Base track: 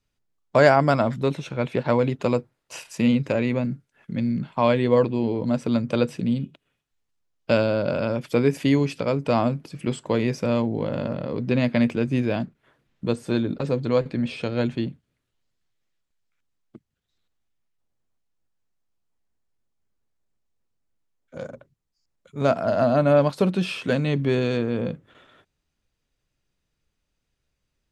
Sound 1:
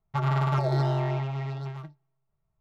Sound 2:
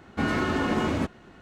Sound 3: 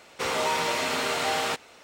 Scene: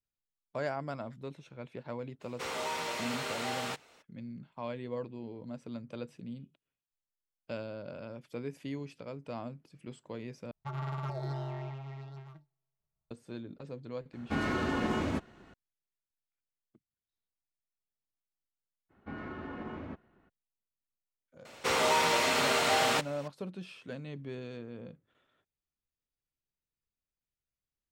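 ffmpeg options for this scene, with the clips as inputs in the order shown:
ffmpeg -i bed.wav -i cue0.wav -i cue1.wav -i cue2.wav -filter_complex "[3:a]asplit=2[link_01][link_02];[2:a]asplit=2[link_03][link_04];[0:a]volume=-19.5dB[link_05];[link_04]lowpass=2200[link_06];[link_05]asplit=2[link_07][link_08];[link_07]atrim=end=10.514[link_09];[1:a]atrim=end=2.6,asetpts=PTS-STARTPTS,volume=-12dB[link_10];[link_08]atrim=start=13.106[link_11];[link_01]atrim=end=1.83,asetpts=PTS-STARTPTS,volume=-9.5dB,afade=type=in:duration=0.02,afade=type=out:start_time=1.81:duration=0.02,adelay=2200[link_12];[link_03]atrim=end=1.41,asetpts=PTS-STARTPTS,volume=-6dB,afade=type=in:duration=0.004:curve=hsin,afade=type=out:start_time=1.406:duration=0.004:curve=hsin,adelay=14130[link_13];[link_06]atrim=end=1.41,asetpts=PTS-STARTPTS,volume=-16dB,afade=type=in:duration=0.02,afade=type=out:start_time=1.39:duration=0.02,adelay=18890[link_14];[link_02]atrim=end=1.83,asetpts=PTS-STARTPTS,volume=-0.5dB,afade=type=in:duration=0.004:curve=hsin,afade=type=out:start_time=1.826:duration=0.004:curve=hsin,adelay=21450[link_15];[link_09][link_10]acrossfade=duration=0.004:curve1=hsin:curve2=hsin[link_16];[link_16][link_11]acrossfade=duration=0.004:curve1=hsin:curve2=hsin[link_17];[link_17][link_12][link_13][link_14][link_15]amix=inputs=5:normalize=0" out.wav

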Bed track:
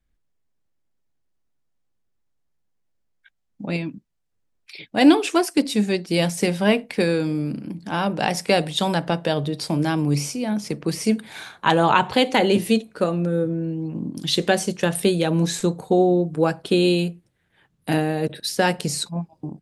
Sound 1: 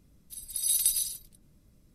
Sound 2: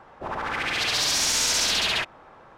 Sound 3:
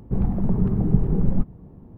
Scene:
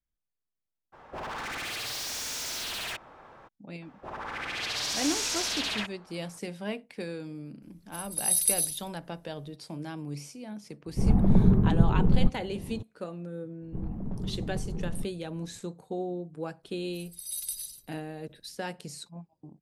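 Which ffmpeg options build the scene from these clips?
ffmpeg -i bed.wav -i cue0.wav -i cue1.wav -i cue2.wav -filter_complex "[2:a]asplit=2[link_01][link_02];[1:a]asplit=2[link_03][link_04];[3:a]asplit=2[link_05][link_06];[0:a]volume=-16.5dB[link_07];[link_01]volume=32.5dB,asoftclip=hard,volume=-32.5dB[link_08];[link_03]equalizer=frequency=11000:width=4.9:gain=8[link_09];[link_05]dynaudnorm=framelen=140:gausssize=3:maxgain=11.5dB[link_10];[link_06]asoftclip=type=hard:threshold=-13.5dB[link_11];[link_08]atrim=end=2.57,asetpts=PTS-STARTPTS,volume=-2dB,afade=type=in:duration=0.02,afade=type=out:start_time=2.55:duration=0.02,adelay=920[link_12];[link_02]atrim=end=2.57,asetpts=PTS-STARTPTS,volume=-8dB,afade=type=in:duration=0.004:curve=hsin,afade=type=out:start_time=2.566:duration=0.004:curve=hsin,adelay=3820[link_13];[link_09]atrim=end=1.94,asetpts=PTS-STARTPTS,volume=-3.5dB,afade=type=in:duration=0.004:curve=hsin,afade=type=out:start_time=1.936:duration=0.004:curve=hsin,adelay=336042S[link_14];[link_10]atrim=end=1.97,asetpts=PTS-STARTPTS,volume=-6dB,afade=type=in:duration=0.004:curve=hsin,afade=type=out:start_time=1.966:duration=0.004:curve=hsin,adelay=10860[link_15];[link_11]atrim=end=1.97,asetpts=PTS-STARTPTS,volume=-13dB,afade=type=in:duration=0.004:curve=hsin,afade=type=out:start_time=1.966:duration=0.004:curve=hsin,adelay=13620[link_16];[link_04]atrim=end=1.94,asetpts=PTS-STARTPTS,volume=-9.5dB,afade=type=in:duration=0.004:curve=hsin,afade=type=out:start_time=1.936:duration=0.004:curve=hsin,adelay=16630[link_17];[link_07][link_12][link_13][link_14][link_15][link_16][link_17]amix=inputs=7:normalize=0" out.wav

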